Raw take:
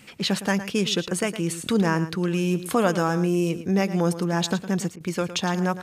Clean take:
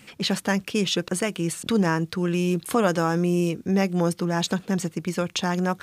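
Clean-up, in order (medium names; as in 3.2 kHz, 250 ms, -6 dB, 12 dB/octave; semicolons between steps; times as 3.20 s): interpolate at 4.96 s, 43 ms; inverse comb 111 ms -13 dB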